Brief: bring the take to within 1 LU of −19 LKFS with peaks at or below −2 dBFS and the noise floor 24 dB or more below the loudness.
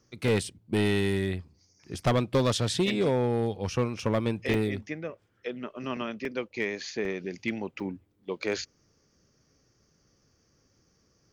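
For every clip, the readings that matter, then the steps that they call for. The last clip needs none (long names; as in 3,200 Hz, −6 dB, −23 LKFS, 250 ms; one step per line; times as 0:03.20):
share of clipped samples 1.0%; peaks flattened at −19.0 dBFS; number of dropouts 6; longest dropout 2.6 ms; integrated loudness −29.5 LKFS; sample peak −19.0 dBFS; target loudness −19.0 LKFS
→ clipped peaks rebuilt −19 dBFS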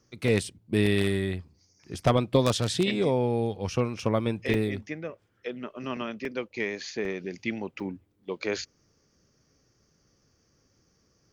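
share of clipped samples 0.0%; number of dropouts 6; longest dropout 2.6 ms
→ repair the gap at 0:00.28/0:04.00/0:04.54/0:06.25/0:07.05/0:07.80, 2.6 ms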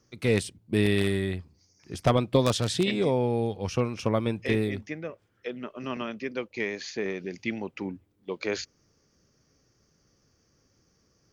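number of dropouts 0; integrated loudness −28.5 LKFS; sample peak −10.0 dBFS; target loudness −19.0 LKFS
→ level +9.5 dB
brickwall limiter −2 dBFS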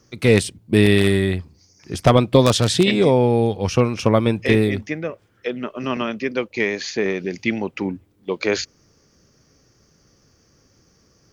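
integrated loudness −19.5 LKFS; sample peak −2.0 dBFS; background noise floor −60 dBFS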